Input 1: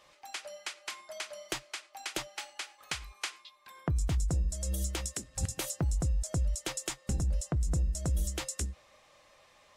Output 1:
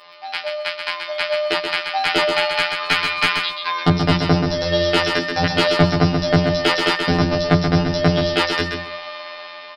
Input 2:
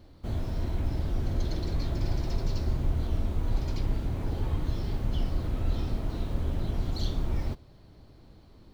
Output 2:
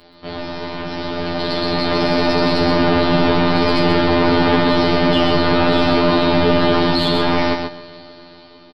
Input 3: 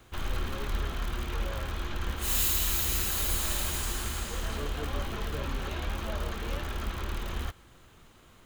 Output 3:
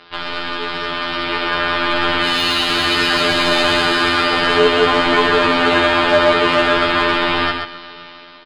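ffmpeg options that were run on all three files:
-filter_complex "[0:a]aresample=11025,aeval=exprs='0.0531*(abs(mod(val(0)/0.0531+3,4)-2)-1)':c=same,aresample=44100,afftfilt=real='hypot(re,im)*cos(PI*b)':imag='0':win_size=2048:overlap=0.75,aemphasis=mode=production:type=bsi,aecho=1:1:6.7:0.84,asoftclip=type=tanh:threshold=-19.5dB,bandreject=f=60:t=h:w=6,bandreject=f=120:t=h:w=6,bandreject=f=180:t=h:w=6,bandreject=f=240:t=h:w=6,dynaudnorm=f=810:g=5:m=14.5dB,apsyclip=18dB,acrossover=split=2700[a][b];[b]acompressor=threshold=-18dB:ratio=4:attack=1:release=60[c];[a][c]amix=inputs=2:normalize=0,equalizer=f=1.2k:w=0.32:g=4.5,asplit=2[d][e];[e]aecho=0:1:131|262|393:0.531|0.0903|0.0153[f];[d][f]amix=inputs=2:normalize=0,volume=-6dB"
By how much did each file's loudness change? +16.5, +16.5, +16.5 LU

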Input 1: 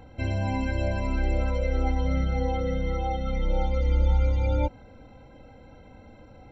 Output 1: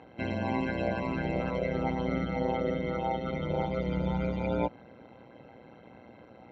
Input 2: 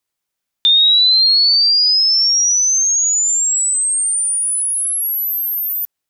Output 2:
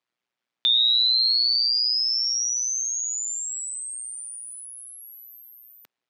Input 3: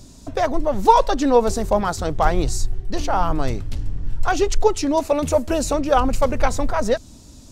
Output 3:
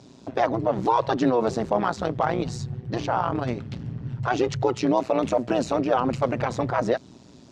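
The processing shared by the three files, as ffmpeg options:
-af "alimiter=limit=-12.5dB:level=0:latency=1:release=34,tremolo=f=120:d=0.857,highpass=160,lowpass=3.6k,volume=3.5dB"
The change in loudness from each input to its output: -4.0, -9.0, -4.5 LU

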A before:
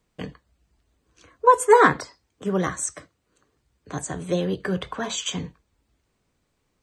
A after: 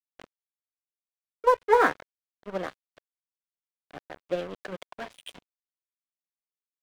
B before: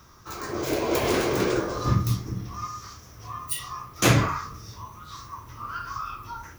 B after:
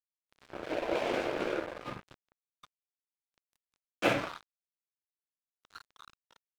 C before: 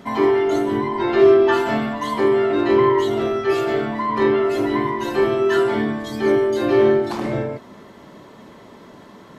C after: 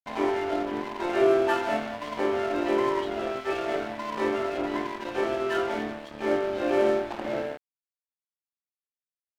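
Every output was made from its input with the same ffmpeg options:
-af "highpass=360,equalizer=f=400:t=q:w=4:g=-7,equalizer=f=580:t=q:w=4:g=3,equalizer=f=1.1k:t=q:w=4:g=-10,equalizer=f=1.9k:t=q:w=4:g=-7,lowpass=f=2.8k:w=0.5412,lowpass=f=2.8k:w=1.3066,aeval=exprs='sgn(val(0))*max(abs(val(0))-0.0188,0)':c=same"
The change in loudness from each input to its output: -4.0, -7.5, -9.0 LU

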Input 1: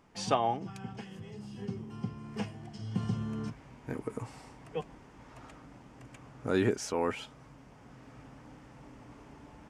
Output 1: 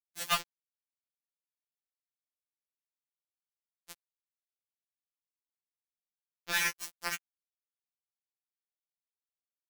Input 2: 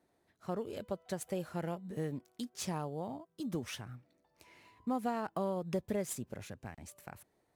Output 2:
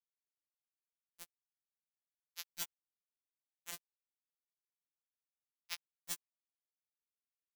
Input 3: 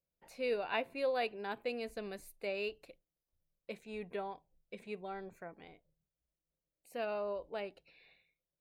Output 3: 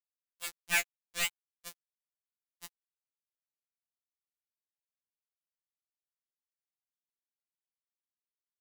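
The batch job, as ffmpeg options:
-af "highpass=f=1.9k:t=q:w=1.9,acrusher=bits=4:mix=0:aa=0.000001,afftfilt=real='re*2.83*eq(mod(b,8),0)':imag='im*2.83*eq(mod(b,8),0)':win_size=2048:overlap=0.75,volume=8.5dB"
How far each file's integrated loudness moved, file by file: +2.5, -7.5, +6.5 LU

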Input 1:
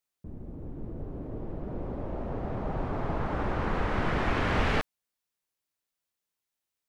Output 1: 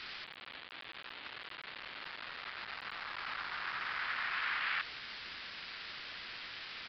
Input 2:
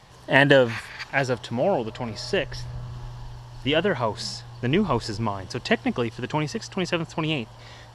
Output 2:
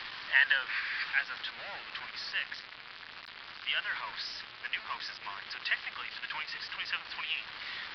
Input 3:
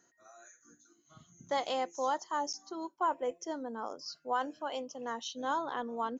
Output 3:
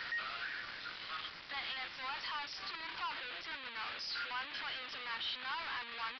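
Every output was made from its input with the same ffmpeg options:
-af "aeval=exprs='val(0)+0.5*0.0596*sgn(val(0))':c=same,highpass=f=1.4k:w=0.5412,highpass=f=1.4k:w=1.3066,aemphasis=mode=reproduction:type=75kf,acontrast=26,acrusher=bits=5:mix=0:aa=0.000001,aresample=11025,aresample=44100,volume=-7.5dB"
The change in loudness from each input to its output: -8.0, -9.0, -4.5 LU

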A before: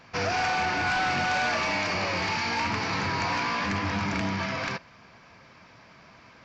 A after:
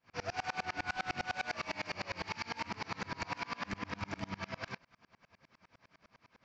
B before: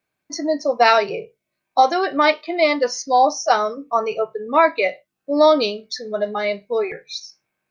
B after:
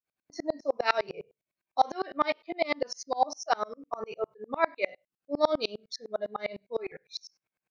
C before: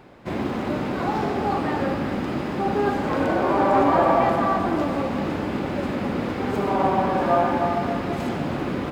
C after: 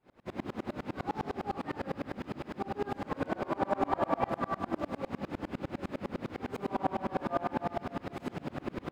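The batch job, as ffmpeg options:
-af "aeval=exprs='val(0)*pow(10,-31*if(lt(mod(-9.9*n/s,1),2*abs(-9.9)/1000),1-mod(-9.9*n/s,1)/(2*abs(-9.9)/1000),(mod(-9.9*n/s,1)-2*abs(-9.9)/1000)/(1-2*abs(-9.9)/1000))/20)':c=same,volume=-4.5dB"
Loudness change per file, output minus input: -13.0, -12.5, -13.0 LU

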